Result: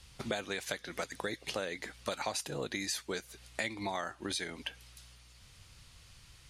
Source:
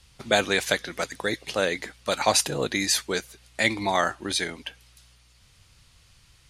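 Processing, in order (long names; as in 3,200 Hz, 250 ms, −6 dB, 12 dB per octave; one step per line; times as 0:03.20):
downward compressor 6 to 1, threshold −34 dBFS, peak gain reduction 17.5 dB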